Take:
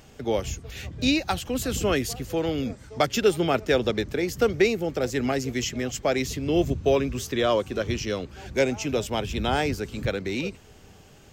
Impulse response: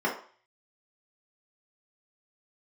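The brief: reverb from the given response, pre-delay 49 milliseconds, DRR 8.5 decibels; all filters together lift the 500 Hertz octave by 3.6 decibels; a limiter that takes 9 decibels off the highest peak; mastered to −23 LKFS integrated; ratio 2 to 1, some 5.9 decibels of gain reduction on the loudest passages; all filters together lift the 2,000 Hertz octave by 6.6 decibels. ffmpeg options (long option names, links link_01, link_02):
-filter_complex "[0:a]equalizer=frequency=500:width_type=o:gain=4,equalizer=frequency=2000:width_type=o:gain=8,acompressor=threshold=-23dB:ratio=2,alimiter=limit=-17.5dB:level=0:latency=1,asplit=2[link_01][link_02];[1:a]atrim=start_sample=2205,adelay=49[link_03];[link_02][link_03]afir=irnorm=-1:irlink=0,volume=-20.5dB[link_04];[link_01][link_04]amix=inputs=2:normalize=0,volume=4.5dB"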